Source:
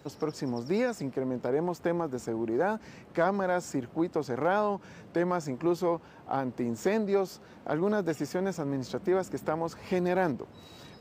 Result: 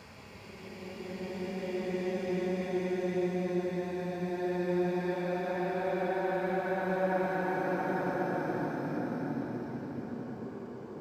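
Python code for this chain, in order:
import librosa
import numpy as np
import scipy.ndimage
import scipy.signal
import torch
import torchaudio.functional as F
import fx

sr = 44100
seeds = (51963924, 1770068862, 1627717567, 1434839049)

y = fx.paulstretch(x, sr, seeds[0], factor=18.0, window_s=0.25, from_s=9.81)
y = fx.echo_feedback(y, sr, ms=1060, feedback_pct=46, wet_db=-13.0)
y = y * 10.0 ** (-5.0 / 20.0)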